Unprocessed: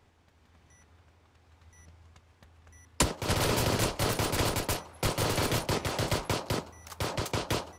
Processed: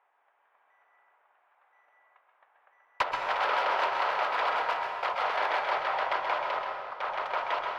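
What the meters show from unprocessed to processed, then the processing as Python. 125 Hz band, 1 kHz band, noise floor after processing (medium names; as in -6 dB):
under -30 dB, +7.5 dB, -70 dBFS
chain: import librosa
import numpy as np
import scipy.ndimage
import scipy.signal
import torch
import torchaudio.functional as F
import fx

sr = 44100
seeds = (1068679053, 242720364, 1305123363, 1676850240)

p1 = fx.wiener(x, sr, points=9)
p2 = scipy.signal.sosfilt(scipy.signal.butter(4, 750.0, 'highpass', fs=sr, output='sos'), p1)
p3 = fx.high_shelf(p2, sr, hz=2800.0, db=-11.0)
p4 = fx.quant_dither(p3, sr, seeds[0], bits=8, dither='none')
p5 = p3 + (p4 * librosa.db_to_amplitude(-3.0))
p6 = 10.0 ** (-18.0 / 20.0) * (np.abs((p5 / 10.0 ** (-18.0 / 20.0) + 3.0) % 4.0 - 2.0) - 1.0)
p7 = fx.air_absorb(p6, sr, metres=300.0)
p8 = p7 + fx.echo_single(p7, sr, ms=131, db=-7.0, dry=0)
p9 = fx.rev_plate(p8, sr, seeds[1], rt60_s=1.7, hf_ratio=0.8, predelay_ms=110, drr_db=3.5)
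y = p9 * librosa.db_to_amplitude(4.5)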